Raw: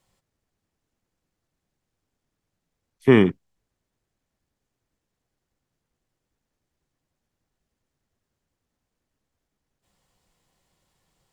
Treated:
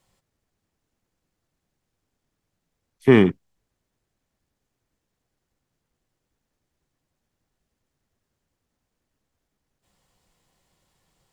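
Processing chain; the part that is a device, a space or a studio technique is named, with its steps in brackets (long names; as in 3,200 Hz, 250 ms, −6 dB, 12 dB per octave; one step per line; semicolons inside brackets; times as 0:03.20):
parallel distortion (in parallel at −12.5 dB: hard clipping −16.5 dBFS, distortion −6 dB)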